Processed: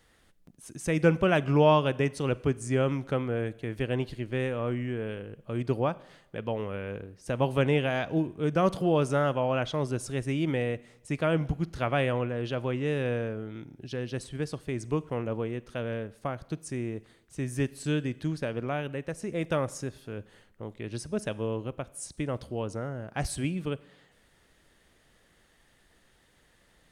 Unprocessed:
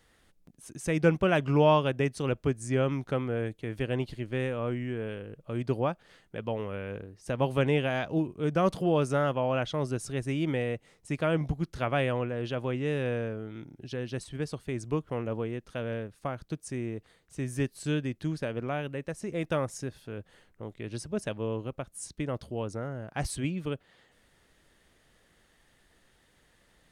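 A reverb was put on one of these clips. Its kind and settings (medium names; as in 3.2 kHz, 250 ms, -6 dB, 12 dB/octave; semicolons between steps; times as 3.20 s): Schroeder reverb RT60 0.86 s, combs from 33 ms, DRR 19.5 dB; trim +1 dB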